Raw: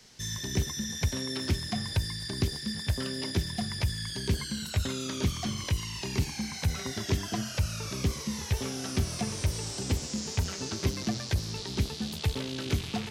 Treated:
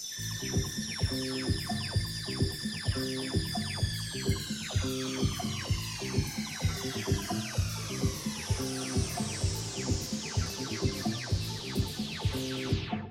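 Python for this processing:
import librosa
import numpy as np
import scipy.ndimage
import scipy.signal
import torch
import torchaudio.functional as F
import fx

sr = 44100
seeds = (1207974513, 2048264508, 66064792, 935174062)

y = fx.spec_delay(x, sr, highs='early', ms=372)
y = fx.rev_gated(y, sr, seeds[0], gate_ms=290, shape='falling', drr_db=11.5)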